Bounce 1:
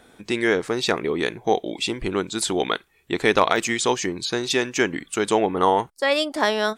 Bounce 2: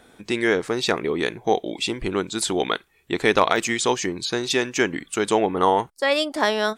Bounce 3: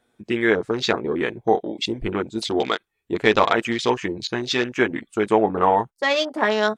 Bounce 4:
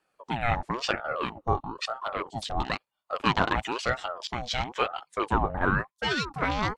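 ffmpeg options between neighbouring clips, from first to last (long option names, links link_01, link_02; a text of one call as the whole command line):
ffmpeg -i in.wav -af anull out.wav
ffmpeg -i in.wav -af "flanger=delay=8.2:depth=1.4:regen=-28:speed=0.82:shape=triangular,afwtdn=0.02,volume=4.5dB" out.wav
ffmpeg -i in.wav -af "aeval=exprs='val(0)*sin(2*PI*700*n/s+700*0.5/1*sin(2*PI*1*n/s))':channel_layout=same,volume=-4.5dB" out.wav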